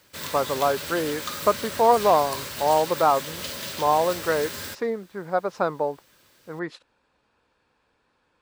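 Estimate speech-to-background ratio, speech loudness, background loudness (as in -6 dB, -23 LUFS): 8.0 dB, -24.5 LUFS, -32.5 LUFS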